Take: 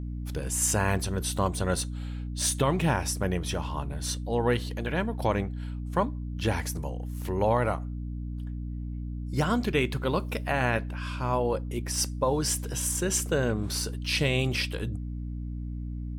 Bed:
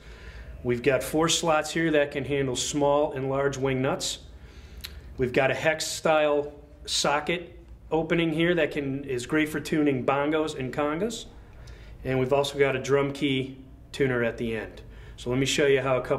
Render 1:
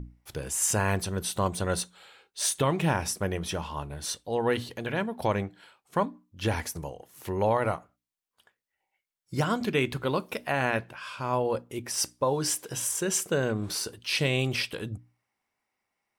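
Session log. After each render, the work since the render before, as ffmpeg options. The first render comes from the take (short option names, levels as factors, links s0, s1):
-af "bandreject=f=60:t=h:w=6,bandreject=f=120:t=h:w=6,bandreject=f=180:t=h:w=6,bandreject=f=240:t=h:w=6,bandreject=f=300:t=h:w=6"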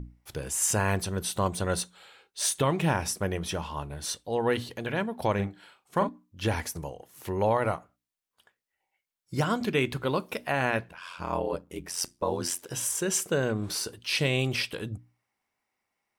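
-filter_complex "[0:a]asettb=1/sr,asplit=3[s0][s1][s2];[s0]atrim=end=5.354[s3];[s1]atrim=start=5.35:end=6.09,asetpts=PTS-STARTPTS,afade=t=in:d=0.004:c=qsin,afade=t=out:st=0.736:d=0.004:c=qsin,asplit=2[s4][s5];[s5]adelay=40,volume=0.422[s6];[s4][s6]amix=inputs=2:normalize=0,atrim=end_sample=32634[s7];[s2]atrim=start=6.086[s8];[s3][s7]acrossfade=d=0.004:c1=hsin:c2=qsin[s9];[s9][s8]acrossfade=d=0.004:c1=qsin:c2=hsin,asettb=1/sr,asplit=3[s10][s11][s12];[s10]atrim=end=10.884[s13];[s11]atrim=start=10.88:end=12.7,asetpts=PTS-STARTPTS,afade=t=in:d=0.004:c=qsin,afade=t=out:st=1.816:d=0.004:c=qsin,aeval=exprs='val(0)*sin(2*PI*44*n/s)':c=same[s14];[s12]atrim=start=12.696[s15];[s13][s14]acrossfade=d=0.004:c1=hsin:c2=qsin[s16];[s16][s15]acrossfade=d=0.004:c1=qsin:c2=hsin"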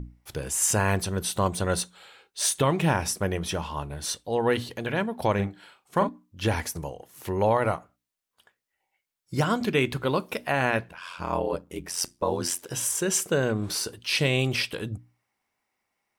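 -af "volume=1.33"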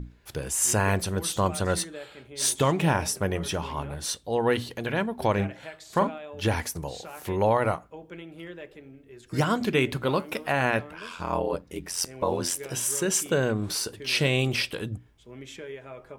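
-filter_complex "[1:a]volume=0.126[s0];[0:a][s0]amix=inputs=2:normalize=0"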